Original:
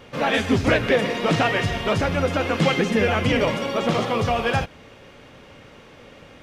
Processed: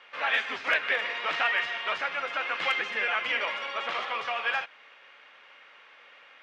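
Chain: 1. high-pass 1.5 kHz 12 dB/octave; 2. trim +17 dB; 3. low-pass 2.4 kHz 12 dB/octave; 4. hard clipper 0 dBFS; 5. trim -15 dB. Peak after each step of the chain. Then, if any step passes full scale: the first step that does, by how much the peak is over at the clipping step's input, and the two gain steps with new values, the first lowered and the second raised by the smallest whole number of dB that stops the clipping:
-11.5 dBFS, +5.5 dBFS, +4.0 dBFS, 0.0 dBFS, -15.0 dBFS; step 2, 4.0 dB; step 2 +13 dB, step 5 -11 dB

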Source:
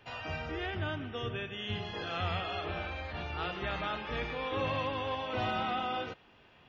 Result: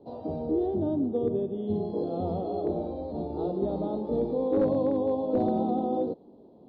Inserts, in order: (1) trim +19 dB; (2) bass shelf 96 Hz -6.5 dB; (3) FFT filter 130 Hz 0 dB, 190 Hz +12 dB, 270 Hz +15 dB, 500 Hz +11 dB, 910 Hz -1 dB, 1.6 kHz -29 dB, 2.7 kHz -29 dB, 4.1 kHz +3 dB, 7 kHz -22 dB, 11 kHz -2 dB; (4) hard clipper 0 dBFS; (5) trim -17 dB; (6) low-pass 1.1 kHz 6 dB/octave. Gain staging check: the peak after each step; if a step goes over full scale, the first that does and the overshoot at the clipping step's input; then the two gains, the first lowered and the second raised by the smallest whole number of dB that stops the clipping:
-3.5 dBFS, -4.0 dBFS, +5.0 dBFS, 0.0 dBFS, -17.0 dBFS, -17.0 dBFS; step 3, 5.0 dB; step 1 +14 dB, step 5 -12 dB

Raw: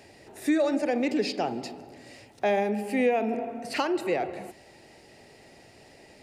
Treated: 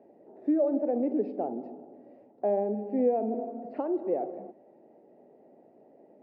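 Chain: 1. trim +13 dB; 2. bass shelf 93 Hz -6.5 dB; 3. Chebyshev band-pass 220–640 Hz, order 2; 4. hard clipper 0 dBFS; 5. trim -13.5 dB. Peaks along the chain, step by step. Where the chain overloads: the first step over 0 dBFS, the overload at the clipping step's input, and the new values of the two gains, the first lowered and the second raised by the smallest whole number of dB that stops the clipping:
-1.5 dBFS, -1.0 dBFS, -3.0 dBFS, -3.0 dBFS, -16.5 dBFS; nothing clips

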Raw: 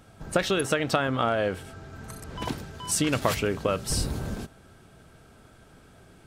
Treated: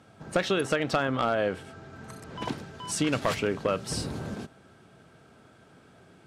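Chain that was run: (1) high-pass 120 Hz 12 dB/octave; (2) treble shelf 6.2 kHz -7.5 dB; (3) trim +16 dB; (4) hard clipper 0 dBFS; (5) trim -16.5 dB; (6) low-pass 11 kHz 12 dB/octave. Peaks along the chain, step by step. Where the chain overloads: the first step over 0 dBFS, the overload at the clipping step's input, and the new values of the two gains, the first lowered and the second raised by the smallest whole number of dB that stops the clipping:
-7.5 dBFS, -7.5 dBFS, +8.5 dBFS, 0.0 dBFS, -16.5 dBFS, -16.0 dBFS; step 3, 8.5 dB; step 3 +7 dB, step 5 -7.5 dB

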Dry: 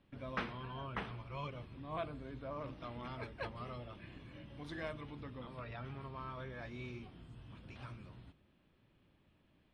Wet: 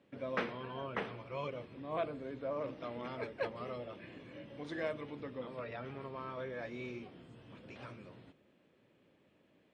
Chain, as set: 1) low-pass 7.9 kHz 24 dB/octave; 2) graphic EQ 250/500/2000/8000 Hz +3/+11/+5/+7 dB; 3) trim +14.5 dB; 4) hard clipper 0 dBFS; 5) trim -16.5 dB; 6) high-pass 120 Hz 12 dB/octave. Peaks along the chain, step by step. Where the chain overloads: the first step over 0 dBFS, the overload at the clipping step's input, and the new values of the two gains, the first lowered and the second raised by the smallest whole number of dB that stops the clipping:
-24.0 dBFS, -20.0 dBFS, -5.5 dBFS, -5.5 dBFS, -22.0 dBFS, -22.0 dBFS; nothing clips

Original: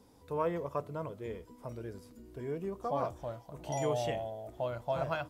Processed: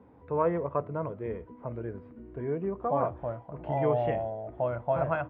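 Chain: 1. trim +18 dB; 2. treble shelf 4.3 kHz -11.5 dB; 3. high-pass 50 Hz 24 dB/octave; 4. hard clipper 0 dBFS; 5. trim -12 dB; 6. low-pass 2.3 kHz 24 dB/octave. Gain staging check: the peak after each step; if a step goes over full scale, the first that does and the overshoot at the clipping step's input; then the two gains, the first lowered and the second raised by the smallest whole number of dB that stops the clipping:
-2.0 dBFS, -2.5 dBFS, -2.5 dBFS, -2.5 dBFS, -14.5 dBFS, -14.5 dBFS; nothing clips

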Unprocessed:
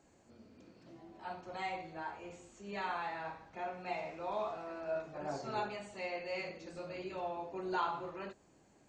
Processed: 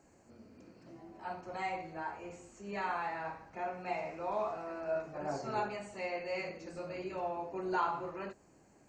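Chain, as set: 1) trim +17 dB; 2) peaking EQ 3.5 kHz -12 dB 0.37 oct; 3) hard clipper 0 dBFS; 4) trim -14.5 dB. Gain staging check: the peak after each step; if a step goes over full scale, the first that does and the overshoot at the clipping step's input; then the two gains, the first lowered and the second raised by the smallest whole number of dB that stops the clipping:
-6.0 dBFS, -6.0 dBFS, -6.0 dBFS, -20.5 dBFS; nothing clips

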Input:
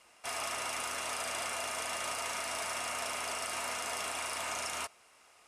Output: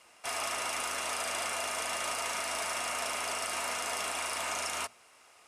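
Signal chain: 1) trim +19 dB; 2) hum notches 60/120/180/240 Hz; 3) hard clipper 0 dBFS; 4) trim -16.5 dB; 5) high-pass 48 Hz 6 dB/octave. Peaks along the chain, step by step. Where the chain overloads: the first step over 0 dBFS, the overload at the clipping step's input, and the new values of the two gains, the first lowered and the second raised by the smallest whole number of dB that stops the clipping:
-4.0 dBFS, -4.0 dBFS, -4.0 dBFS, -20.5 dBFS, -20.5 dBFS; nothing clips

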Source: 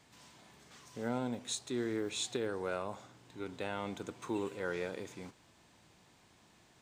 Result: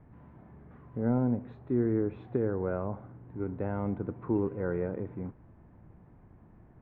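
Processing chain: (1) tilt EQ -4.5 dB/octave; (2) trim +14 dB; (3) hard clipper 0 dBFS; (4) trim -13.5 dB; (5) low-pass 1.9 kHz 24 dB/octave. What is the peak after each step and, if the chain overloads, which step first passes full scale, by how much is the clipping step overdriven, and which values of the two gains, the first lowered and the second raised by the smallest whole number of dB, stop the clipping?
-17.0 dBFS, -3.0 dBFS, -3.0 dBFS, -16.5 dBFS, -17.0 dBFS; nothing clips

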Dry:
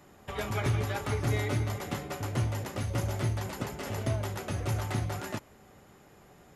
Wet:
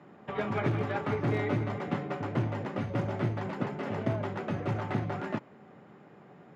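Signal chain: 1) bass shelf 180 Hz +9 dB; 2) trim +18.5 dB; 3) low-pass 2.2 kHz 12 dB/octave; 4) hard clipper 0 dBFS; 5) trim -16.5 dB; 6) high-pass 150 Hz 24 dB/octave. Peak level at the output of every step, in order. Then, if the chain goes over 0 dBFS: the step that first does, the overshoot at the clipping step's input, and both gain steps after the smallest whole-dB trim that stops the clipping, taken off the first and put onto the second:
-13.5 dBFS, +5.0 dBFS, +4.5 dBFS, 0.0 dBFS, -16.5 dBFS, -15.0 dBFS; step 2, 4.5 dB; step 2 +13.5 dB, step 5 -11.5 dB

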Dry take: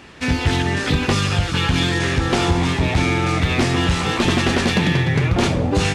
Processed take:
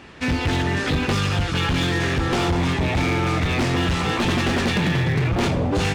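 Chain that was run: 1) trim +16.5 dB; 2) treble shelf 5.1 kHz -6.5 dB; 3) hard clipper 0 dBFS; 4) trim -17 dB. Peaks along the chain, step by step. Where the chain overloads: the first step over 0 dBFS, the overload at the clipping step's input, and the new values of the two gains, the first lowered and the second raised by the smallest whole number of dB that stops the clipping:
+6.5 dBFS, +6.5 dBFS, 0.0 dBFS, -17.0 dBFS; step 1, 6.5 dB; step 1 +9.5 dB, step 4 -10 dB

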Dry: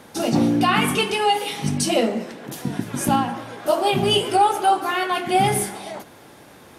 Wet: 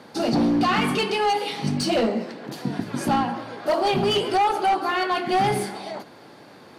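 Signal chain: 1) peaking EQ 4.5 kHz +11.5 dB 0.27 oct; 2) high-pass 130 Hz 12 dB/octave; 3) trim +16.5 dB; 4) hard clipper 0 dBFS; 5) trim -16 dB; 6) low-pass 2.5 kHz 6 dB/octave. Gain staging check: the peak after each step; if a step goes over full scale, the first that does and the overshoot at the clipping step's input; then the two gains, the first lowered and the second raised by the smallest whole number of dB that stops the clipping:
-6.0 dBFS, -6.5 dBFS, +10.0 dBFS, 0.0 dBFS, -16.0 dBFS, -16.0 dBFS; step 3, 10.0 dB; step 3 +6.5 dB, step 5 -6 dB

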